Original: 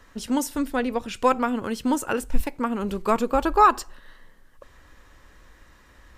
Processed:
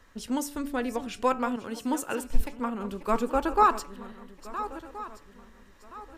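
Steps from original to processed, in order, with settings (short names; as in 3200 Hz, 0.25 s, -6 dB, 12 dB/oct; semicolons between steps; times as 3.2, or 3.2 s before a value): regenerating reverse delay 0.687 s, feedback 54%, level -12.5 dB; de-hum 143.4 Hz, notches 21; 1.56–3.63 three-band expander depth 40%; gain -5 dB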